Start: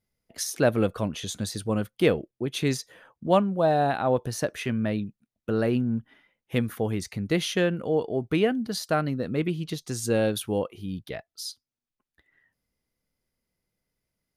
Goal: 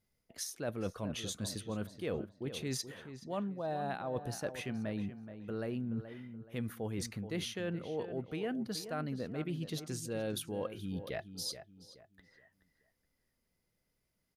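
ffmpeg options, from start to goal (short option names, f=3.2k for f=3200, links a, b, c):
-filter_complex "[0:a]areverse,acompressor=threshold=-36dB:ratio=6,areverse,asplit=2[a][b];[b]adelay=426,lowpass=f=2.2k:p=1,volume=-10.5dB,asplit=2[c][d];[d]adelay=426,lowpass=f=2.2k:p=1,volume=0.34,asplit=2[e][f];[f]adelay=426,lowpass=f=2.2k:p=1,volume=0.34,asplit=2[g][h];[h]adelay=426,lowpass=f=2.2k:p=1,volume=0.34[i];[a][c][e][g][i]amix=inputs=5:normalize=0"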